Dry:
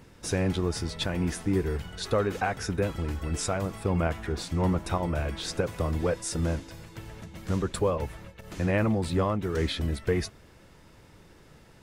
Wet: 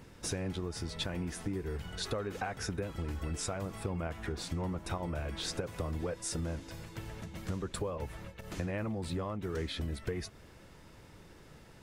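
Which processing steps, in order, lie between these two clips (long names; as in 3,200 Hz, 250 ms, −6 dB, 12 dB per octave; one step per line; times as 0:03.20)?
downward compressor, threshold −32 dBFS, peak gain reduction 11.5 dB
level −1 dB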